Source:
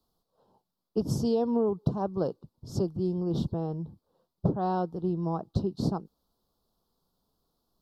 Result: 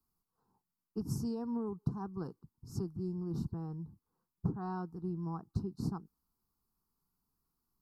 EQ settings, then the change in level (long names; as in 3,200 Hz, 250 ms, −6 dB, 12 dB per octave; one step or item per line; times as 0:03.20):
high-shelf EQ 7,500 Hz +5.5 dB
phaser with its sweep stopped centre 1,400 Hz, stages 4
−6.0 dB